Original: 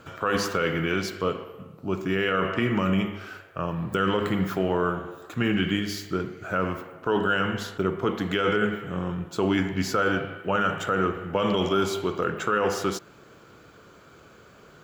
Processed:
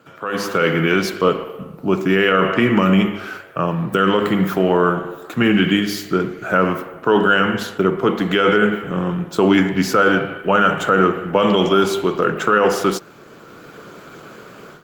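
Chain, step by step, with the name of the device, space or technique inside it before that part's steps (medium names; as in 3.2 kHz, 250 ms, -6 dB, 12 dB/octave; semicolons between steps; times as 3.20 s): video call (high-pass 130 Hz 24 dB/octave; level rider gain up to 15.5 dB; trim -1 dB; Opus 32 kbps 48 kHz)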